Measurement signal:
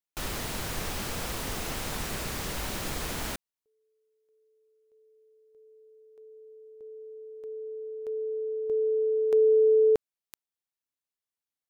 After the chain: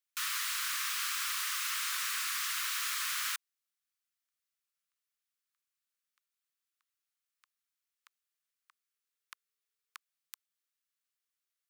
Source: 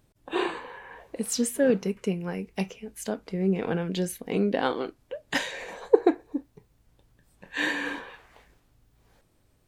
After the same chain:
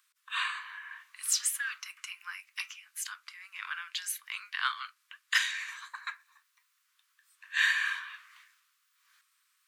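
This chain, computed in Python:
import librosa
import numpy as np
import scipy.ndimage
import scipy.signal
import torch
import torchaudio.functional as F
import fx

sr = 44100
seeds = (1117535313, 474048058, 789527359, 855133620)

y = scipy.signal.sosfilt(scipy.signal.butter(12, 1100.0, 'highpass', fs=sr, output='sos'), x)
y = y * 10.0 ** (2.5 / 20.0)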